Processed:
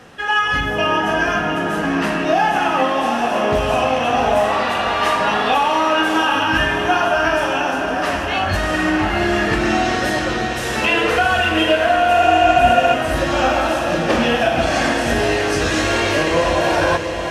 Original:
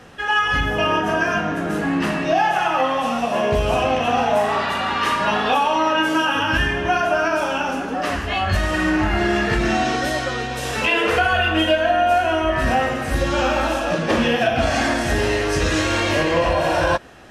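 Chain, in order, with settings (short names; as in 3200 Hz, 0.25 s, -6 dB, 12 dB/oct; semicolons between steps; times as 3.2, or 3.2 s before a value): low shelf 84 Hz -7 dB; diffused feedback echo 0.717 s, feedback 53%, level -7 dB; spectral repair 12.18–12.92, 600–7800 Hz before; gain +1.5 dB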